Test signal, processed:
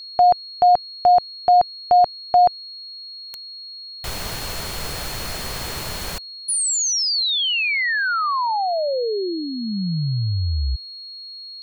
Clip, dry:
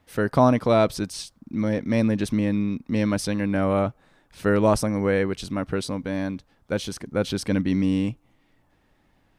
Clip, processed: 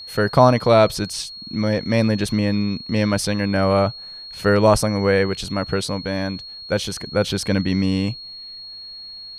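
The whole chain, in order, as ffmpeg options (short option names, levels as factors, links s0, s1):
-af "equalizer=f=270:t=o:w=0.77:g=-7,aeval=exprs='val(0)+0.01*sin(2*PI*4300*n/s)':c=same,volume=2"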